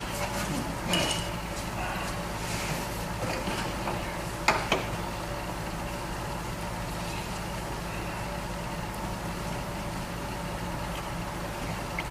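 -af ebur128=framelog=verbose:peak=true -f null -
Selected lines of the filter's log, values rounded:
Integrated loudness:
  I:         -32.3 LUFS
  Threshold: -42.3 LUFS
Loudness range:
  LRA:         3.8 LU
  Threshold: -52.4 LUFS
  LRA low:   -34.4 LUFS
  LRA high:  -30.6 LUFS
True peak:
  Peak:      -10.2 dBFS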